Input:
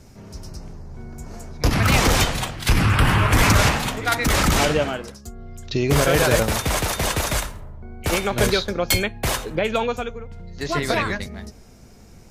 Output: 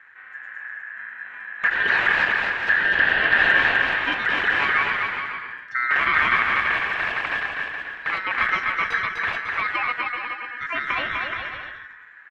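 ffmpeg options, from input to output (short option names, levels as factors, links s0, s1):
-filter_complex "[0:a]lowpass=1100,aeval=exprs='val(0)*sin(2*PI*1700*n/s)':c=same,asplit=2[s0][s1];[s1]aecho=0:1:250|425|547.5|633.2|693.3:0.631|0.398|0.251|0.158|0.1[s2];[s0][s2]amix=inputs=2:normalize=0"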